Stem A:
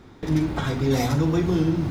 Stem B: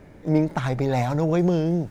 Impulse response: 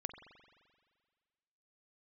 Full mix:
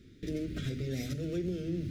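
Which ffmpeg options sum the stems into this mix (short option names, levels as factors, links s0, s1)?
-filter_complex "[0:a]acompressor=threshold=0.0708:ratio=6,volume=0.447[s0];[1:a]bandpass=f=730:t=q:w=0.97:csg=0,aeval=exprs='sgn(val(0))*max(abs(val(0))-0.00841,0)':c=same,volume=-1,volume=0.708[s1];[s0][s1]amix=inputs=2:normalize=0,asuperstop=centerf=890:order=4:qfactor=0.52,alimiter=level_in=1.19:limit=0.0631:level=0:latency=1:release=266,volume=0.841"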